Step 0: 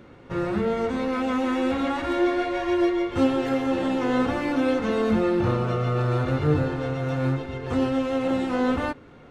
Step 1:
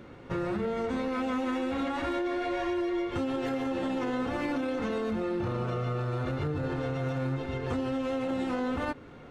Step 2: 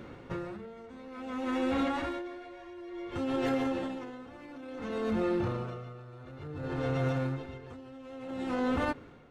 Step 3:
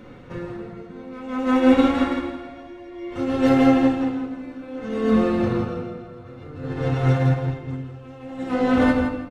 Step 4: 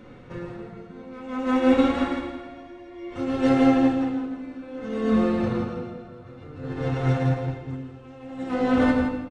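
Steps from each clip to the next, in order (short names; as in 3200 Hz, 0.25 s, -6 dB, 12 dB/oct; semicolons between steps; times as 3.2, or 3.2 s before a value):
limiter -19 dBFS, peak gain reduction 8.5 dB; compressor 4:1, threshold -28 dBFS, peak gain reduction 5 dB
dB-linear tremolo 0.57 Hz, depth 19 dB; gain +2 dB
feedback echo 0.166 s, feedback 32%, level -7 dB; reverb RT60 1.5 s, pre-delay 4 ms, DRR -1 dB; upward expander 1.5:1, over -33 dBFS; gain +7.5 dB
on a send: echo 0.11 s -11.5 dB; on the sum: downsampling 22050 Hz; gain -3 dB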